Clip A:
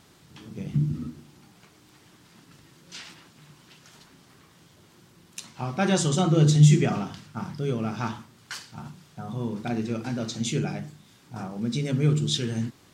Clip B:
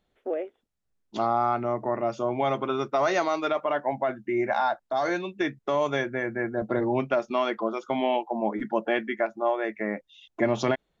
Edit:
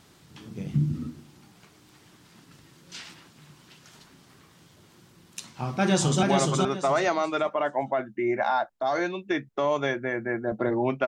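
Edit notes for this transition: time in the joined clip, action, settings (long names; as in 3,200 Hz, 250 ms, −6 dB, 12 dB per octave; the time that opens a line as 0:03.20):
clip A
0:05.55–0:06.23: delay throw 420 ms, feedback 25%, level −2.5 dB
0:06.23: continue with clip B from 0:02.33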